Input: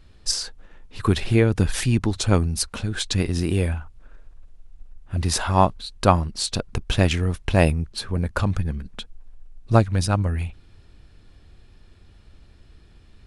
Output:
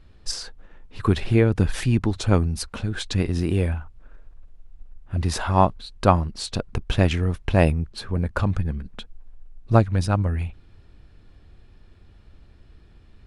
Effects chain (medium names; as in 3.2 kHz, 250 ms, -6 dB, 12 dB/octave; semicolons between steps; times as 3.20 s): treble shelf 3.8 kHz -9 dB